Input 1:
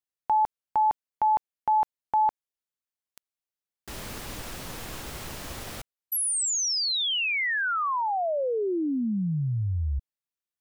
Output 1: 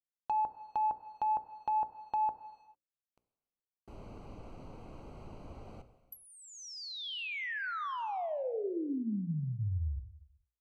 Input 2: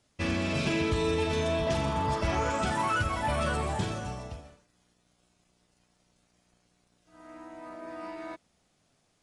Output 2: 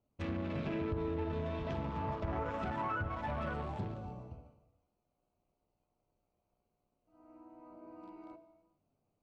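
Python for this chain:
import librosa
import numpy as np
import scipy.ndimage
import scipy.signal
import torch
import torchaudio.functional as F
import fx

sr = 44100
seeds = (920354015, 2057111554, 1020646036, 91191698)

y = fx.wiener(x, sr, points=25)
y = fx.rev_gated(y, sr, seeds[0], gate_ms=470, shape='falling', drr_db=11.0)
y = fx.env_lowpass_down(y, sr, base_hz=1300.0, full_db=-23.5)
y = fx.hum_notches(y, sr, base_hz=60, count=9)
y = y * 10.0 ** (-7.0 / 20.0)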